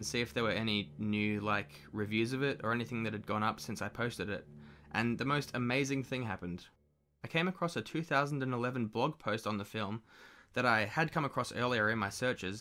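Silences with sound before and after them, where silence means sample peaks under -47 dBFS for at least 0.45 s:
6.63–7.24

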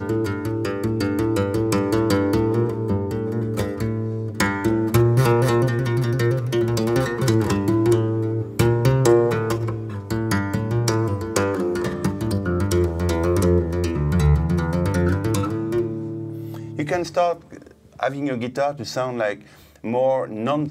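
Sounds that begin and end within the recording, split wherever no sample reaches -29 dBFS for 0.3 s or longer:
18–19.34

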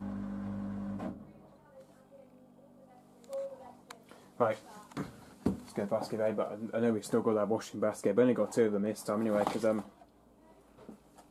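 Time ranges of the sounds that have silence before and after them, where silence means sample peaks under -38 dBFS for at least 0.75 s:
3.33–9.81

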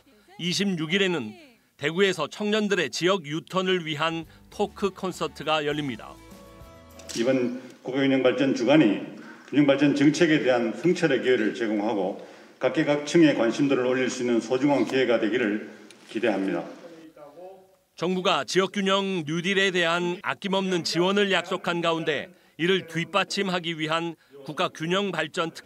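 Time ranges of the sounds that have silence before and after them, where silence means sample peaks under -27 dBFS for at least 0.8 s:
7.09–16.62

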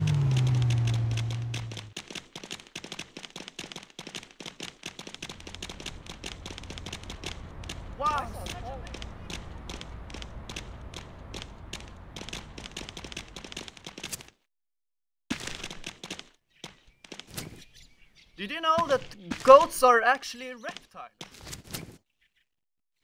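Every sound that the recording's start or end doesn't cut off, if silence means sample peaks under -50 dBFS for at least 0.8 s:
15.3–21.97

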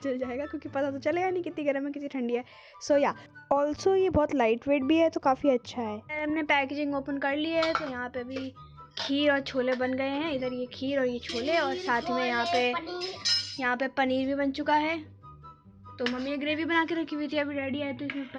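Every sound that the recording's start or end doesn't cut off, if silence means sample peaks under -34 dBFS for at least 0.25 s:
2.83–3.12
3.51–8.49
8.97–15

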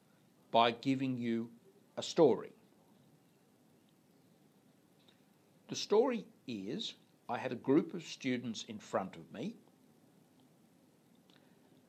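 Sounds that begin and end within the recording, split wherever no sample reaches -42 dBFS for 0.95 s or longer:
5.69–9.51

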